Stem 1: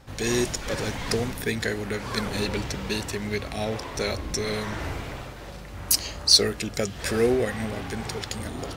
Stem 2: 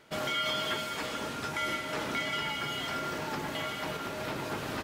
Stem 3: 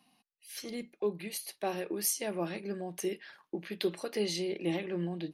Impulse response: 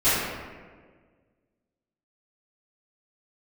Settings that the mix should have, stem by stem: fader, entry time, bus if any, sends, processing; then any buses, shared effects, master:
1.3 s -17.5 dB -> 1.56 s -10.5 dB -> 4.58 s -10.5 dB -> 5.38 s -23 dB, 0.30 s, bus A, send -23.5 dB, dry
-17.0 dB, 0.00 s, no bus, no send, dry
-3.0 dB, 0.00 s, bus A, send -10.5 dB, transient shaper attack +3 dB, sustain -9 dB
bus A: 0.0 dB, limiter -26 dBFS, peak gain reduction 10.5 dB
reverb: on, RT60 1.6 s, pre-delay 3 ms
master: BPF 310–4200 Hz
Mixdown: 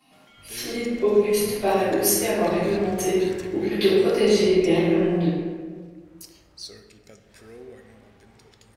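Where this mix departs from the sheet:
stem 2 -17.0 dB -> -23.0 dB; stem 3: send -10.5 dB -> -2 dB; master: missing BPF 310–4200 Hz

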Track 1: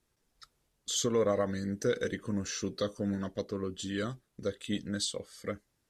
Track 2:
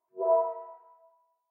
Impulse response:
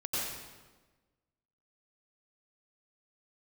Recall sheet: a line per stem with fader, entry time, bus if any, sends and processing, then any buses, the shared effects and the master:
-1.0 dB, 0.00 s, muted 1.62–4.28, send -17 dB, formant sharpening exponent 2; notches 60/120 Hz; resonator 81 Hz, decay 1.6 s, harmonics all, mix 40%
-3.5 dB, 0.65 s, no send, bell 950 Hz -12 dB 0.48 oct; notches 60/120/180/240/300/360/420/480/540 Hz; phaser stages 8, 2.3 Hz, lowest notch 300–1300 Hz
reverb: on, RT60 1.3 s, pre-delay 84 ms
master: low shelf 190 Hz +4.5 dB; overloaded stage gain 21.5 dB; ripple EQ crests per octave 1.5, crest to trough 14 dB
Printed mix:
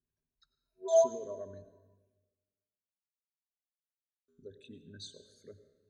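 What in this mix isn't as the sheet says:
stem 1 -1.0 dB -> -12.0 dB; master: missing low shelf 190 Hz +4.5 dB

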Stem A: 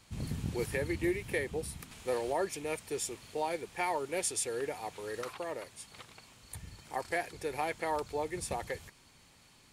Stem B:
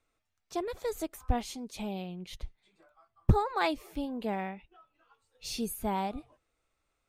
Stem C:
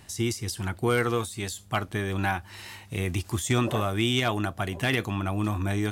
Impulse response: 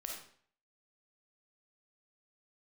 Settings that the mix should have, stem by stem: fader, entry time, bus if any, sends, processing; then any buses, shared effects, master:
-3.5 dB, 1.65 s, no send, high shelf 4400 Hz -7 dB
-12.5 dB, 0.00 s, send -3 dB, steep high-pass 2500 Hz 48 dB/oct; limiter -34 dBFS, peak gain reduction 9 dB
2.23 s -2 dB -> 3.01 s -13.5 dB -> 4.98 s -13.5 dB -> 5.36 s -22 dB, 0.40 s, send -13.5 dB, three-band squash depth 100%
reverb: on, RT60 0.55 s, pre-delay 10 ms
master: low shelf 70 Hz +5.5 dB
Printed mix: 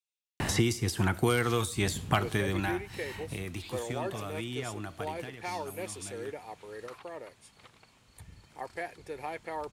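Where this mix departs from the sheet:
stem B: missing limiter -34 dBFS, peak gain reduction 9 dB; master: missing low shelf 70 Hz +5.5 dB

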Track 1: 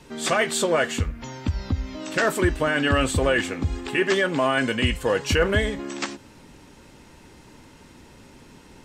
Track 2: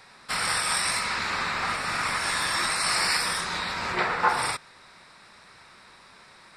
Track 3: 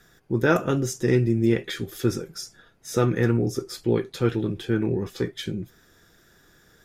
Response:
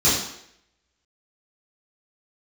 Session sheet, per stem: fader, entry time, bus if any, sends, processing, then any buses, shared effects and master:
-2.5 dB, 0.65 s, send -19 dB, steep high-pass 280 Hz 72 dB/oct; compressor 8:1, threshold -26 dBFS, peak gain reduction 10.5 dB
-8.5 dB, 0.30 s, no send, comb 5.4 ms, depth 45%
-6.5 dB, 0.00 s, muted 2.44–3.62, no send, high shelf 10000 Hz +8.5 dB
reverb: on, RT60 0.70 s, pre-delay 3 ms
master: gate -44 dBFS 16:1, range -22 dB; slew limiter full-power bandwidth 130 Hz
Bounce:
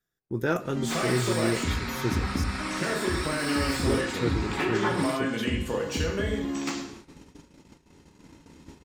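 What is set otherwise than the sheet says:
stem 1: missing steep high-pass 280 Hz 72 dB/oct; stem 2: entry 0.30 s -> 0.60 s

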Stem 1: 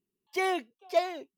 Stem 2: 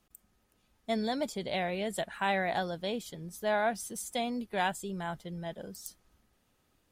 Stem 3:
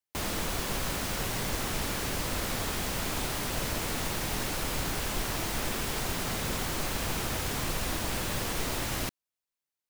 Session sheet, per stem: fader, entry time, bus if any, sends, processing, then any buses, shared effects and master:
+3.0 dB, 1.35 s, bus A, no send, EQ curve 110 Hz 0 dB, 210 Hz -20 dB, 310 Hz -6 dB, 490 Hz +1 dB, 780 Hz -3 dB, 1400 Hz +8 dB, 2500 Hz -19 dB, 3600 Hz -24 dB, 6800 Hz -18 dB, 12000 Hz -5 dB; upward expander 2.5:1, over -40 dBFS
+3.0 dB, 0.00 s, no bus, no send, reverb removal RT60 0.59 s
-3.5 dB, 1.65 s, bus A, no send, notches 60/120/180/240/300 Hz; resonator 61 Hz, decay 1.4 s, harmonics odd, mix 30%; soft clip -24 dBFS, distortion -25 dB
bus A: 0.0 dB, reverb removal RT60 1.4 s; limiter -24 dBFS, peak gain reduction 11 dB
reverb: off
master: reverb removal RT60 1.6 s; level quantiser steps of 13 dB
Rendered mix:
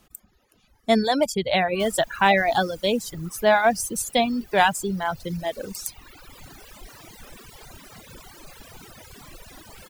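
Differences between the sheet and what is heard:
stem 2 +3.0 dB -> +13.0 dB; master: missing level quantiser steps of 13 dB

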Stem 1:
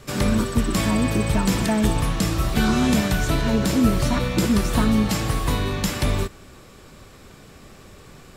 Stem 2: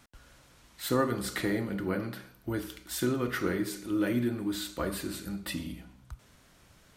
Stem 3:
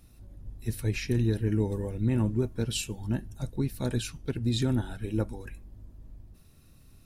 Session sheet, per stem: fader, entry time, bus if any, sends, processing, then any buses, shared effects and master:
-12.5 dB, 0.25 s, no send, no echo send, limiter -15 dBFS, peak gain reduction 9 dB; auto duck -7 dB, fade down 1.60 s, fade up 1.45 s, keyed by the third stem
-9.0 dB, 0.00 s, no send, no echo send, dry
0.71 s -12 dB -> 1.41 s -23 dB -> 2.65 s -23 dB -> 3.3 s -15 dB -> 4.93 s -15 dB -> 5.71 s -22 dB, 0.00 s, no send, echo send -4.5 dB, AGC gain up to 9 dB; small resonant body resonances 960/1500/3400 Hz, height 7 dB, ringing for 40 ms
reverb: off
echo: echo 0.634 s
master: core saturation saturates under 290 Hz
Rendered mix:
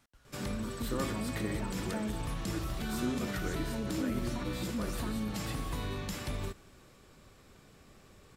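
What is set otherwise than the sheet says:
stem 3: muted; master: missing core saturation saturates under 290 Hz

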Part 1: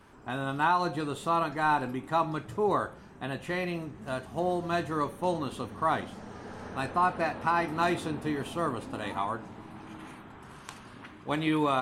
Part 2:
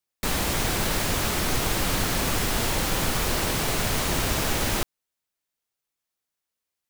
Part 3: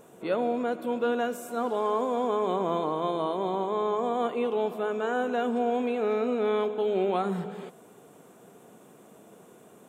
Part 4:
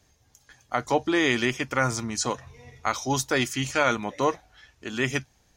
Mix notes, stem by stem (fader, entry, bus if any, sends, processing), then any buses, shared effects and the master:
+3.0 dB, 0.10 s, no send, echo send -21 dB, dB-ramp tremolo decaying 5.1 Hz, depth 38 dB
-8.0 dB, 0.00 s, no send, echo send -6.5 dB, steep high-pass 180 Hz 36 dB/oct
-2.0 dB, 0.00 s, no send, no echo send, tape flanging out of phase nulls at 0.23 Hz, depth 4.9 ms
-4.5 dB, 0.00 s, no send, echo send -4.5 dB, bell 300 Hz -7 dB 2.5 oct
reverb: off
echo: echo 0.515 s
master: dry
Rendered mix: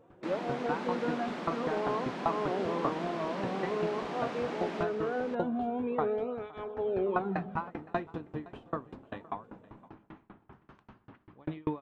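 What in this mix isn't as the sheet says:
stem 4: muted; master: extra tape spacing loss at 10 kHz 34 dB

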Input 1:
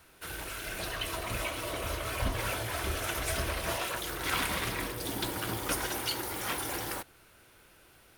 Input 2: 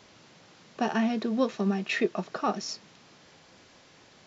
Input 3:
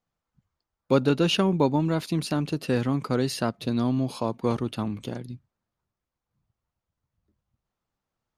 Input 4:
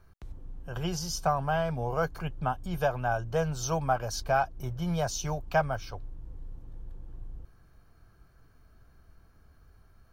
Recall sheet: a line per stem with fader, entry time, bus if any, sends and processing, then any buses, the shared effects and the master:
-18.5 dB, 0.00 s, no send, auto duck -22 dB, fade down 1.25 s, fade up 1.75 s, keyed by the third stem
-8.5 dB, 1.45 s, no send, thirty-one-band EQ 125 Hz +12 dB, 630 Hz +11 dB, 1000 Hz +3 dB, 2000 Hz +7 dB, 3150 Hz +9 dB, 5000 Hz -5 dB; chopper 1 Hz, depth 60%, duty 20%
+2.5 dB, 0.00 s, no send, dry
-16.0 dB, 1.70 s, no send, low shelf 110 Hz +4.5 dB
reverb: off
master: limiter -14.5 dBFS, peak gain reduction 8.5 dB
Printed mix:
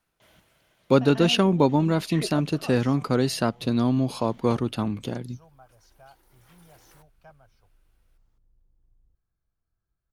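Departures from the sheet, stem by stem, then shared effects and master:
stem 2: entry 1.45 s -> 0.20 s; stem 4 -16.0 dB -> -26.5 dB; master: missing limiter -14.5 dBFS, peak gain reduction 8.5 dB

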